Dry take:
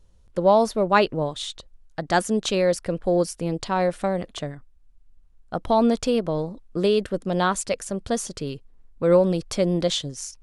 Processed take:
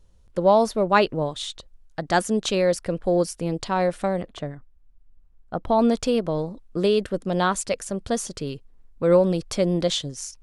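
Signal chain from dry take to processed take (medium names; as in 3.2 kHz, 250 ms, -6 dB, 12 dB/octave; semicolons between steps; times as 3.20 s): 4.22–5.79 s: treble shelf 3.2 kHz -11 dB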